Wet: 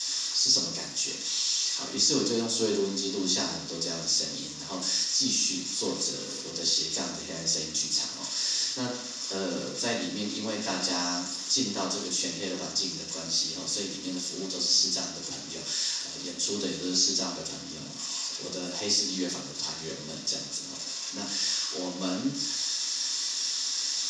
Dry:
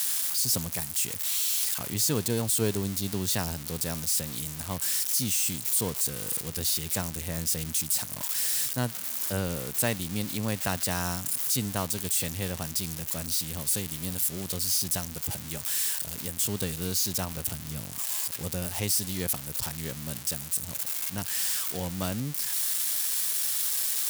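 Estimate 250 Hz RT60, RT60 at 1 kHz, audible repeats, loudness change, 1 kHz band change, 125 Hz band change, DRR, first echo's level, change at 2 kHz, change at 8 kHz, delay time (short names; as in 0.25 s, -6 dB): 0.75 s, 0.70 s, none, -0.5 dB, -0.5 dB, -10.0 dB, -10.0 dB, none, -1.5 dB, -0.5 dB, none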